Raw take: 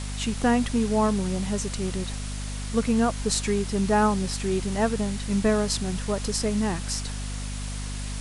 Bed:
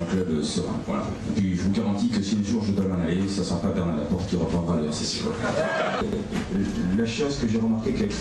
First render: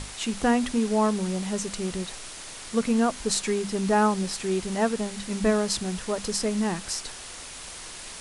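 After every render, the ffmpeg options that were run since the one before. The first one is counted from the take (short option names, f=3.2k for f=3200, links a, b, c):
-af "bandreject=f=50:t=h:w=6,bandreject=f=100:t=h:w=6,bandreject=f=150:t=h:w=6,bandreject=f=200:t=h:w=6,bandreject=f=250:t=h:w=6"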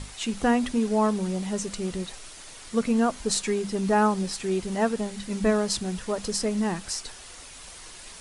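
-af "afftdn=nr=6:nf=-41"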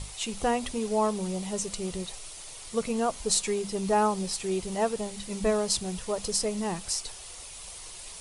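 -af "equalizer=f=250:t=o:w=0.67:g=-10,equalizer=f=1.6k:t=o:w=0.67:g=-8,equalizer=f=10k:t=o:w=0.67:g=4"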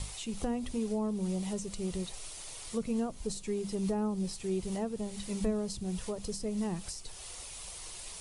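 -filter_complex "[0:a]acrossover=split=340[a][b];[b]acompressor=threshold=-41dB:ratio=6[c];[a][c]amix=inputs=2:normalize=0"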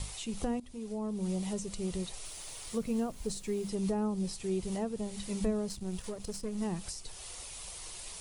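-filter_complex "[0:a]asettb=1/sr,asplit=3[a][b][c];[a]atrim=end=2.254[d];[b]atrim=start=2.25:end=3.69,asetpts=PTS-STARTPTS,afade=t=in:d=0.004:c=qsin,afade=t=out:st=1.436:d=0.004:c=qsin,acrusher=bits=8:mix=0:aa=0.5[e];[c]atrim=start=3.686[f];[d][e]acrossfade=d=0.004:c1=hsin:c2=qsin[g];[g][f]acrossfade=d=0.004:c1=qsin:c2=hsin,asettb=1/sr,asplit=3[h][i][j];[h]atrim=end=5.694[k];[i]atrim=start=5.69:end=6.62,asetpts=PTS-STARTPTS,afade=t=in:d=0.004:c=qsin,afade=t=out:st=0.926:d=0.004:c=qsin,aeval=exprs='if(lt(val(0),0),0.447*val(0),val(0))':c=same[l];[j]atrim=start=6.616[m];[k][l]acrossfade=d=0.004:c1=hsin:c2=qsin[n];[n][m]acrossfade=d=0.004:c1=qsin:c2=hsin,asplit=2[o][p];[o]atrim=end=0.6,asetpts=PTS-STARTPTS,afade=t=out:st=0.596:d=0.004:c=hsin:silence=0.149624[q];[p]atrim=start=0.6,asetpts=PTS-STARTPTS,afade=t=in:d=0.71:silence=0.149624[r];[q][r]concat=n=2:v=0:a=1"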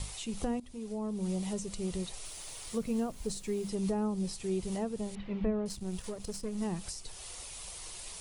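-filter_complex "[0:a]asettb=1/sr,asplit=3[a][b][c];[a]atrim=end=5.154[d];[b]atrim=start=5.15:end=5.66,asetpts=PTS-STARTPTS,afade=t=in:d=0.004:c=qsin,afade=t=out:st=0.506:d=0.004:c=qsin,lowpass=f=2.8k:w=0.5412,lowpass=f=2.8k:w=1.3066[e];[c]atrim=start=5.656[f];[d][e]acrossfade=d=0.004:c1=hsin:c2=qsin[g];[g][f]acrossfade=d=0.004:c1=qsin:c2=hsin"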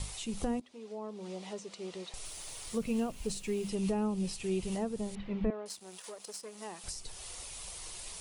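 -filter_complex "[0:a]asettb=1/sr,asplit=3[a][b][c];[a]atrim=end=0.614[d];[b]atrim=start=0.61:end=2.14,asetpts=PTS-STARTPTS,afade=t=in:d=0.004:c=qsin,afade=t=out:st=1.526:d=0.004:c=qsin,highpass=380,lowpass=4.8k[e];[c]atrim=start=2.136[f];[d][e]acrossfade=d=0.004:c1=hsin:c2=qsin[g];[g][f]acrossfade=d=0.004:c1=qsin:c2=hsin,asettb=1/sr,asplit=3[h][i][j];[h]atrim=end=2.824[k];[i]atrim=start=2.82:end=4.75,asetpts=PTS-STARTPTS,afade=t=in:d=0.004:c=qsin,afade=t=out:st=1.926:d=0.004:c=qsin,equalizer=f=2.7k:w=3.1:g=8.5[l];[j]atrim=start=4.746[m];[k][l]acrossfade=d=0.004:c1=hsin:c2=qsin[n];[n][m]acrossfade=d=0.004:c1=qsin:c2=hsin,asettb=1/sr,asplit=3[o][p][q];[o]atrim=end=5.504[r];[p]atrim=start=5.5:end=6.84,asetpts=PTS-STARTPTS,afade=t=in:d=0.004:c=qsin,afade=t=out:st=1.336:d=0.004:c=qsin,highpass=580[s];[q]atrim=start=6.836[t];[r][s]acrossfade=d=0.004:c1=hsin:c2=qsin[u];[u][t]acrossfade=d=0.004:c1=qsin:c2=hsin"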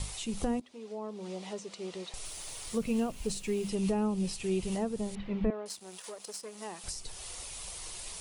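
-af "volume=2dB"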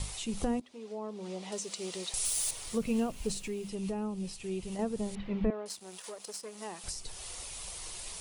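-filter_complex "[0:a]asettb=1/sr,asplit=3[a][b][c];[a]atrim=end=1.524[d];[b]atrim=start=1.52:end=2.51,asetpts=PTS-STARTPTS,afade=t=in:d=0.004:c=qsin,afade=t=out:st=0.986:d=0.004:c=qsin,aemphasis=mode=production:type=75kf[e];[c]atrim=start=2.506[f];[d][e]acrossfade=d=0.004:c1=hsin:c2=qsin[g];[g][f]acrossfade=d=0.004:c1=qsin:c2=hsin,asplit=3[h][i][j];[h]atrim=end=3.482[k];[i]atrim=start=3.478:end=4.792,asetpts=PTS-STARTPTS,volume=-5.5dB[l];[j]atrim=start=4.788[m];[k][l]acrossfade=d=0.004:c1=hsin:c2=hsin[n];[n][m]acrossfade=d=0.004:c1=hsin:c2=hsin"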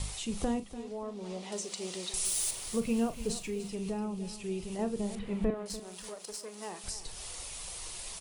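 -filter_complex "[0:a]asplit=2[a][b];[b]adelay=39,volume=-12dB[c];[a][c]amix=inputs=2:normalize=0,aecho=1:1:293|586|879:0.2|0.0638|0.0204"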